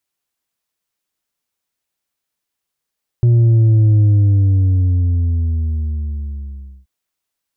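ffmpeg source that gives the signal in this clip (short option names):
-f lavfi -i "aevalsrc='0.376*clip((3.63-t)/2.86,0,1)*tanh(1.58*sin(2*PI*120*3.63/log(65/120)*(exp(log(65/120)*t/3.63)-1)))/tanh(1.58)':d=3.63:s=44100"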